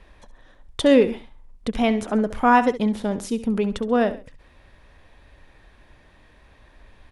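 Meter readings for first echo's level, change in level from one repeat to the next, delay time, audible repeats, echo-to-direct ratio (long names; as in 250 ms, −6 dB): −14.0 dB, −9.0 dB, 67 ms, 2, −13.5 dB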